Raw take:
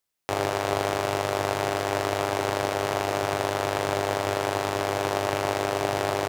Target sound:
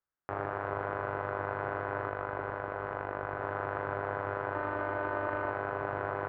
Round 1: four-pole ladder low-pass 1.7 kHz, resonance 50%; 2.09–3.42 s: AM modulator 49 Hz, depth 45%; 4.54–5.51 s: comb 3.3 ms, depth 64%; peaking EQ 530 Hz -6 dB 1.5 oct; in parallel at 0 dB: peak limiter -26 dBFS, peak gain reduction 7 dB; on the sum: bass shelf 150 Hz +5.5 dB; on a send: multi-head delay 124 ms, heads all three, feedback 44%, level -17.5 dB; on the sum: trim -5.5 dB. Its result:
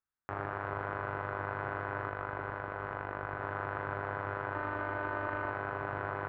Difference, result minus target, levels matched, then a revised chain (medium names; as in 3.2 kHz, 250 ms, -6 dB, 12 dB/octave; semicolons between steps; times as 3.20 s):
500 Hz band -2.5 dB
four-pole ladder low-pass 1.7 kHz, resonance 50%; 2.09–3.42 s: AM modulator 49 Hz, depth 45%; 4.54–5.51 s: comb 3.3 ms, depth 64%; in parallel at 0 dB: peak limiter -26 dBFS, peak gain reduction 9.5 dB; on the sum: bass shelf 150 Hz +5.5 dB; on a send: multi-head delay 124 ms, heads all three, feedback 44%, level -17.5 dB; on the sum: trim -5.5 dB